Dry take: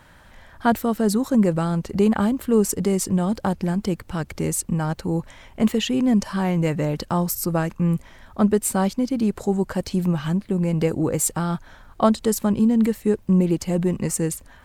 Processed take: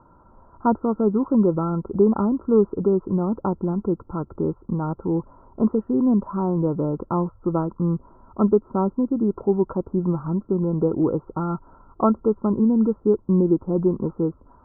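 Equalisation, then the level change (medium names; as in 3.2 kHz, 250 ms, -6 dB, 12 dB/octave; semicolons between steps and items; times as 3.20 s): rippled Chebyshev low-pass 1.4 kHz, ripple 9 dB; +4.5 dB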